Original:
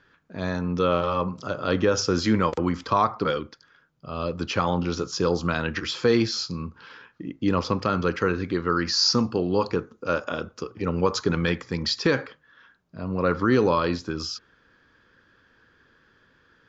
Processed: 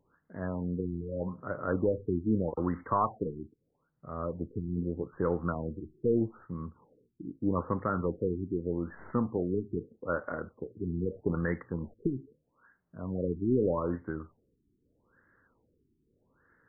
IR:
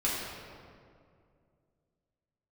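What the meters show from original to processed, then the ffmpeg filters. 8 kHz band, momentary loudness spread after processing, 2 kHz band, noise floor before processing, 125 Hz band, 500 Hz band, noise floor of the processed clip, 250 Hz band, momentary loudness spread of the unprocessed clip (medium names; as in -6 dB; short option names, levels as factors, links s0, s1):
no reading, 12 LU, -14.0 dB, -62 dBFS, -6.0 dB, -7.5 dB, -77 dBFS, -6.5 dB, 11 LU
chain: -af "aeval=exprs='0.355*(cos(1*acos(clip(val(0)/0.355,-1,1)))-cos(1*PI/2))+0.0126*(cos(4*acos(clip(val(0)/0.355,-1,1)))-cos(4*PI/2))':c=same,afftfilt=real='re*lt(b*sr/1024,400*pow(2200/400,0.5+0.5*sin(2*PI*0.8*pts/sr)))':imag='im*lt(b*sr/1024,400*pow(2200/400,0.5+0.5*sin(2*PI*0.8*pts/sr)))':win_size=1024:overlap=0.75,volume=0.473"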